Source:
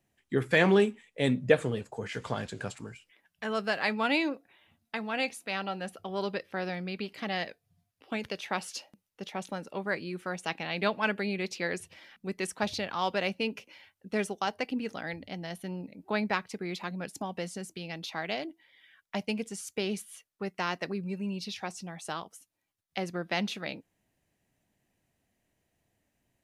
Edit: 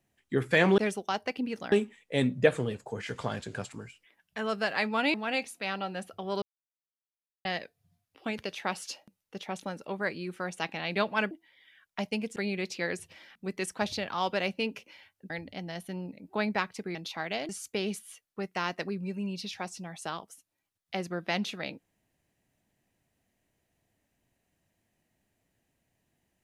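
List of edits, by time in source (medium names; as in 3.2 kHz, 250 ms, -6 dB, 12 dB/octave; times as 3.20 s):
4.20–5.00 s: delete
6.28–7.31 s: mute
14.11–15.05 s: move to 0.78 s
16.70–17.93 s: delete
18.47–19.52 s: move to 11.17 s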